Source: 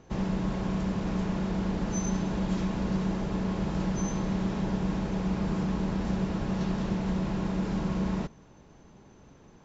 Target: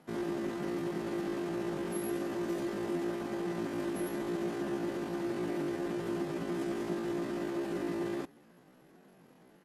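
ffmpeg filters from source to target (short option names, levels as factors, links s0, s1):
-af "asetrate=80880,aresample=44100,atempo=0.545254,lowshelf=f=120:t=q:w=3:g=-12,volume=0.447"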